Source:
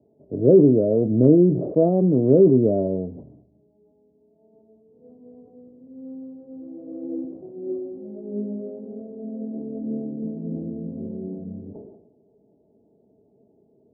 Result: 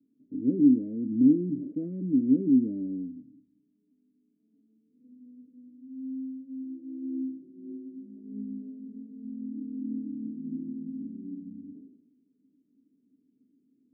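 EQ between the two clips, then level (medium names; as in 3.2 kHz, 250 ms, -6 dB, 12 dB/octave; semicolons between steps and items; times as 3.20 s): vowel filter i; Butterworth band-stop 730 Hz, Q 4.6; high-order bell 500 Hz -10 dB 1.1 oct; +2.5 dB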